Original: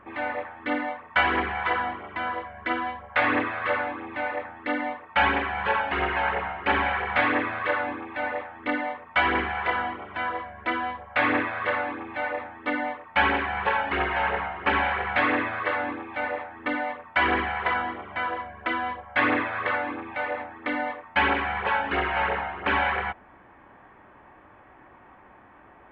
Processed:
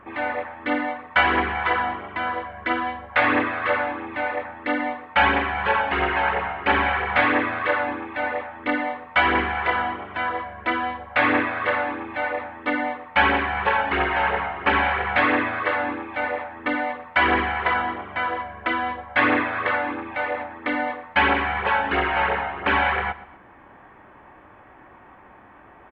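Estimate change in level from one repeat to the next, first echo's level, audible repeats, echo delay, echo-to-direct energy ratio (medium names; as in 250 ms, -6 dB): -7.5 dB, -18.0 dB, 2, 122 ms, -17.5 dB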